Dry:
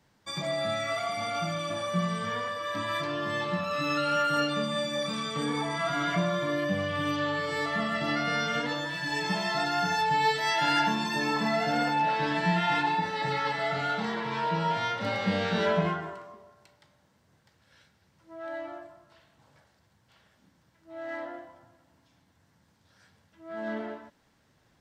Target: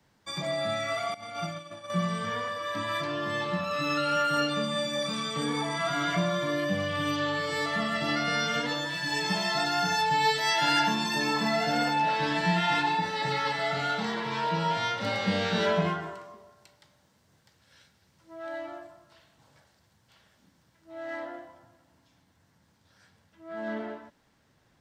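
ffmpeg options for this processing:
-filter_complex "[0:a]asettb=1/sr,asplit=3[a][b][c];[a]atrim=end=1.144[d];[b]atrim=start=1.14:end=1.9,asetpts=PTS-STARTPTS,afade=t=in:d=0.004:c=qsin,afade=t=out:st=0.756:d=0.004:c=qsin,agate=range=-15dB:threshold=-30dB:ratio=16:detection=peak[e];[c]atrim=start=1.896[f];[d][e]acrossfade=d=0.004:c1=hsin:c2=qsin[g];[g][f]acrossfade=d=0.004:c1=qsin:c2=hsin,acrossover=split=180|900|3200[h][i][j][k];[k]dynaudnorm=f=950:g=11:m=5dB[l];[h][i][j][l]amix=inputs=4:normalize=0"

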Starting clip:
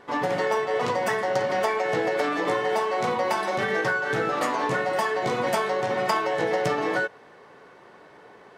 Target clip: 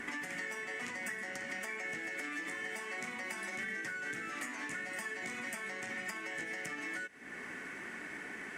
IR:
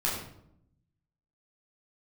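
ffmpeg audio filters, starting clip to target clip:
-filter_complex "[0:a]acompressor=threshold=-43dB:ratio=2.5,equalizer=f=125:t=o:w=1:g=-9,equalizer=f=250:t=o:w=1:g=9,equalizer=f=500:t=o:w=1:g=-12,equalizer=f=1k:t=o:w=1:g=-11,equalizer=f=2k:t=o:w=1:g=12,equalizer=f=4k:t=o:w=1:g=-12,equalizer=f=8k:t=o:w=1:g=9,acrossover=split=640|2600[a][b][c];[a]acompressor=threshold=-59dB:ratio=4[d];[b]acompressor=threshold=-53dB:ratio=4[e];[c]acompressor=threshold=-55dB:ratio=4[f];[d][e][f]amix=inputs=3:normalize=0,volume=9dB" -ar 48000 -c:a libopus -b:a 64k

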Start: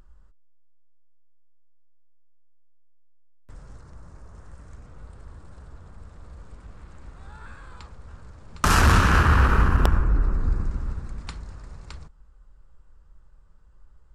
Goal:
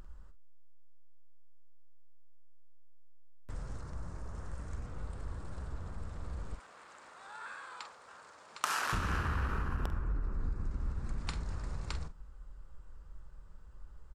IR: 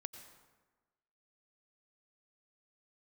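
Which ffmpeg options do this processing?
-filter_complex "[0:a]asettb=1/sr,asplit=3[a][b][c];[a]atrim=end=6.554[d];[b]atrim=start=6.55:end=8.93,asetpts=PTS-STARTPTS,afade=t=in:d=0.004:c=qsin,afade=t=out:st=2.376:d=0.004:c=qsin,highpass=680[e];[c]atrim=start=8.926[f];[d][e]acrossfade=d=0.004:c1=hsin:c2=qsin[g];[g][f]acrossfade=d=0.004:c1=qsin:c2=hsin,acompressor=threshold=-33dB:ratio=10,asplit=2[h][i];[i]adelay=46,volume=-12dB[j];[h][j]amix=inputs=2:normalize=0,volume=2dB"

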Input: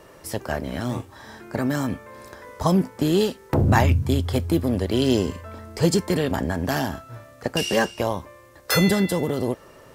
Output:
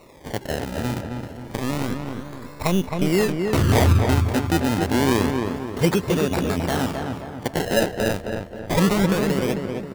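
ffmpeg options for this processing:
-filter_complex "[0:a]asettb=1/sr,asplit=3[a][b][c];[a]atrim=end=1.334[d];[b]atrim=start=1.33:end=3.12,asetpts=PTS-STARTPTS,afade=t=in:d=0.004:c=qsin,afade=t=out:st=1.786:d=0.004:c=qsin,aeval=exprs='if(lt(val(0),0),0.447*val(0),val(0))':c=same[e];[c]atrim=start=3.116[f];[d][e]acrossfade=d=0.004:c1=hsin:c2=qsin[g];[g][f]acrossfade=d=0.004:c1=qsin:c2=hsin,acrusher=samples=27:mix=1:aa=0.000001:lfo=1:lforange=27:lforate=0.28,asplit=2[h][i];[i]adelay=266,lowpass=f=2.2k:p=1,volume=-4.5dB,asplit=2[j][k];[k]adelay=266,lowpass=f=2.2k:p=1,volume=0.48,asplit=2[l][m];[m]adelay=266,lowpass=f=2.2k:p=1,volume=0.48,asplit=2[n][o];[o]adelay=266,lowpass=f=2.2k:p=1,volume=0.48,asplit=2[p][q];[q]adelay=266,lowpass=f=2.2k:p=1,volume=0.48,asplit=2[r][s];[s]adelay=266,lowpass=f=2.2k:p=1,volume=0.48[t];[h][j][l][n][p][r][t]amix=inputs=7:normalize=0"

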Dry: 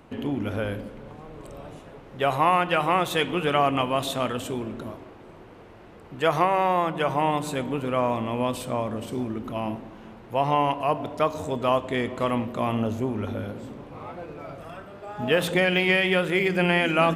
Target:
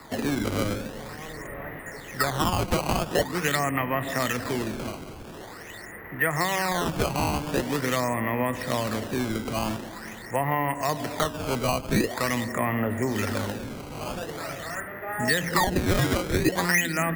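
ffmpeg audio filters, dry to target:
-filter_complex "[0:a]lowpass=f=1.9k:t=q:w=15,acrusher=samples=14:mix=1:aa=0.000001:lfo=1:lforange=22.4:lforate=0.45,acrossover=split=110|270[a][b][c];[a]acompressor=threshold=-36dB:ratio=4[d];[b]acompressor=threshold=-33dB:ratio=4[e];[c]acompressor=threshold=-26dB:ratio=4[f];[d][e][f]amix=inputs=3:normalize=0,volume=2dB"

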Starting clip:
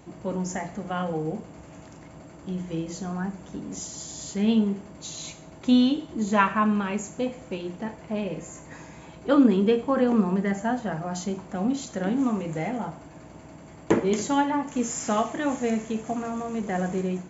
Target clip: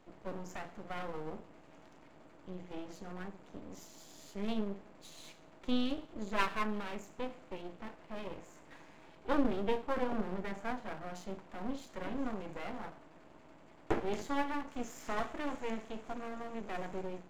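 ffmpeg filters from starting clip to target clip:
-filter_complex "[0:a]acrossover=split=200 4500:gain=0.224 1 0.2[a][b][c];[a][b][c]amix=inputs=3:normalize=0,aeval=exprs='max(val(0),0)':c=same,volume=-6.5dB"

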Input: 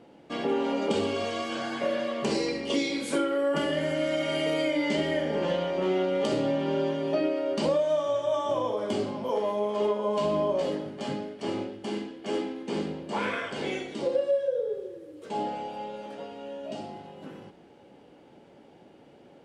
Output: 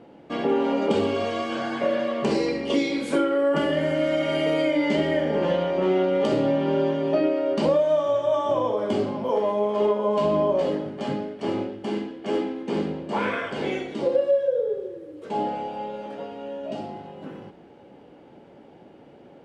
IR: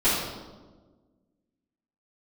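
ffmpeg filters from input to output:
-af "highshelf=f=3.7k:g=-10.5,volume=5dB"

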